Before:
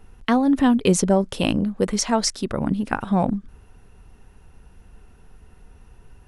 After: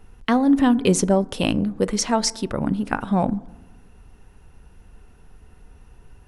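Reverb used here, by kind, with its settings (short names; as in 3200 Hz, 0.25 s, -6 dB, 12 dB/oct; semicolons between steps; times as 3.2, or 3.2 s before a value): FDN reverb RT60 1.1 s, low-frequency decay 1.35×, high-frequency decay 0.3×, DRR 18 dB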